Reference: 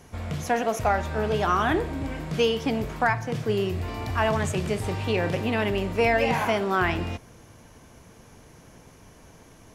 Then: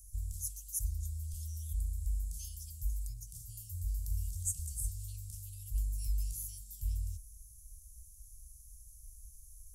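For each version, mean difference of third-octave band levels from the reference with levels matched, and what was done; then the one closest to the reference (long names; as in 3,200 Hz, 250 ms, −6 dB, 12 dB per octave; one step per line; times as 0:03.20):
23.5 dB: inverse Chebyshev band-stop filter 280–1,800 Hz, stop band 80 dB
level +7 dB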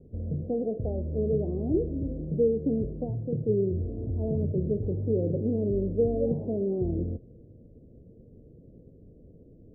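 16.5 dB: Butterworth low-pass 530 Hz 48 dB per octave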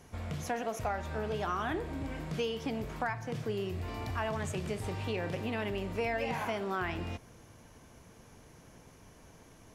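2.5 dB: downward compressor 2 to 1, threshold −29 dBFS, peak gain reduction 7 dB
level −5.5 dB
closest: third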